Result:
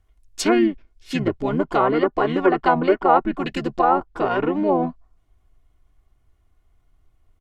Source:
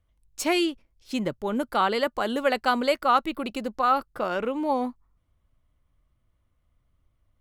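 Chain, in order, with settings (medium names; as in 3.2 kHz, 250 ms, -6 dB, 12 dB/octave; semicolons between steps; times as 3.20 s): harmony voices -7 st -1 dB, -5 st -15 dB; low-pass that closes with the level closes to 1.3 kHz, closed at -17.5 dBFS; comb 2.8 ms, depth 41%; trim +3.5 dB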